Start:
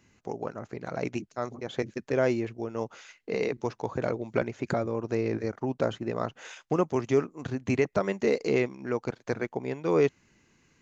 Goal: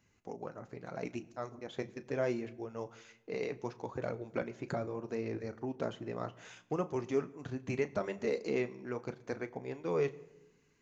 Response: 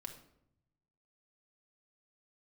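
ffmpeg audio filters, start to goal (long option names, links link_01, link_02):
-filter_complex "[0:a]flanger=delay=1.2:depth=6.4:regen=-54:speed=0.73:shape=triangular,asplit=2[link_01][link_02];[1:a]atrim=start_sample=2205,asetrate=29547,aresample=44100,adelay=34[link_03];[link_02][link_03]afir=irnorm=-1:irlink=0,volume=-12dB[link_04];[link_01][link_04]amix=inputs=2:normalize=0,volume=-4.5dB"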